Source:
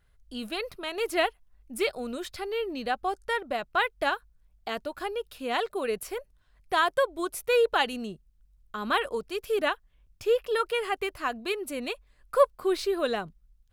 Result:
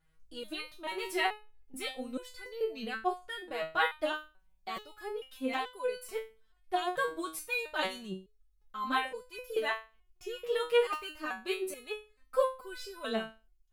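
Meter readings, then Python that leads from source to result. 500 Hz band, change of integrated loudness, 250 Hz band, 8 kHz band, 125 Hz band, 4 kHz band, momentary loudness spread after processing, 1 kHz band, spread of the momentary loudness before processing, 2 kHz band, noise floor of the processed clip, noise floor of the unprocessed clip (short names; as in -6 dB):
-6.5 dB, -6.0 dB, -5.5 dB, -5.0 dB, n/a, -5.0 dB, 13 LU, -5.5 dB, 13 LU, -4.5 dB, -69 dBFS, -64 dBFS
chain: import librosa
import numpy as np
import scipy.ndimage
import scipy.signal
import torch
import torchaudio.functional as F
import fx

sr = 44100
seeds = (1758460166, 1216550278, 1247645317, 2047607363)

y = fx.buffer_crackle(x, sr, first_s=0.91, period_s=0.77, block=256, kind='repeat')
y = fx.resonator_held(y, sr, hz=2.3, low_hz=160.0, high_hz=500.0)
y = F.gain(torch.from_numpy(y), 8.5).numpy()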